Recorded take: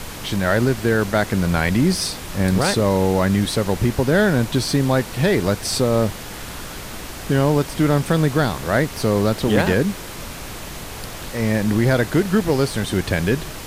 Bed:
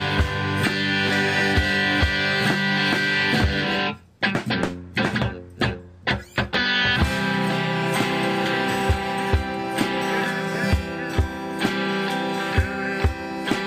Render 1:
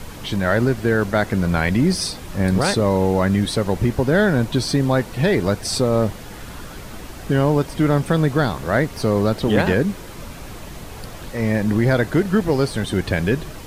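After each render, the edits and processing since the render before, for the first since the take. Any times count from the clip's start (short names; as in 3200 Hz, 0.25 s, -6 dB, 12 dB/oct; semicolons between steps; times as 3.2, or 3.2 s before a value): denoiser 7 dB, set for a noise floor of -33 dBFS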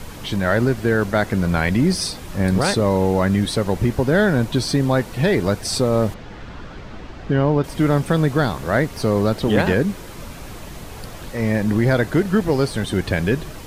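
6.14–7.64 air absorption 170 m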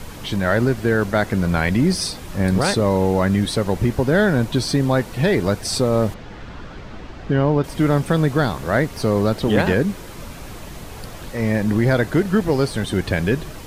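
nothing audible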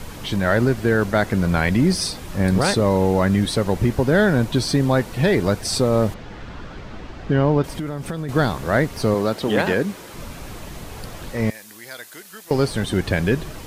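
7.78–8.29 compressor 10:1, threshold -23 dBFS; 9.14–10.14 HPF 260 Hz 6 dB/oct; 11.5–12.51 differentiator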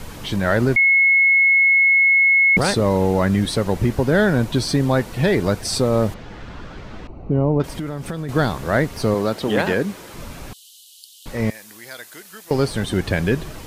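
0.76–2.57 bleep 2180 Hz -11 dBFS; 7.07–7.6 running mean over 26 samples; 10.53–11.26 rippled Chebyshev high-pass 2900 Hz, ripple 3 dB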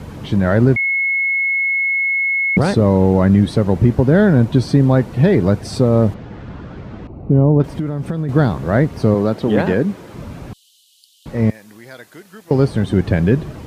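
HPF 100 Hz 12 dB/oct; tilt -3 dB/oct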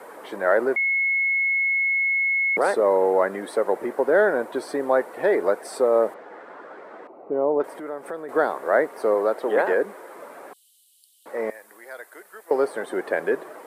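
HPF 440 Hz 24 dB/oct; band shelf 4100 Hz -12 dB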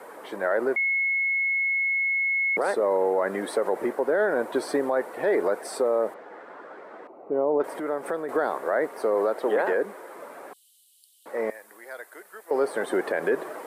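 vocal rider within 4 dB 0.5 s; limiter -15 dBFS, peak gain reduction 8.5 dB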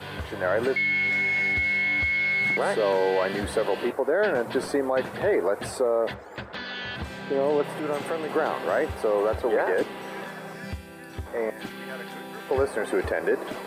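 add bed -14.5 dB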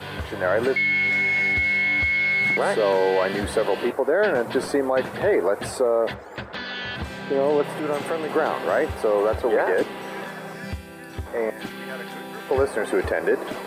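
gain +3 dB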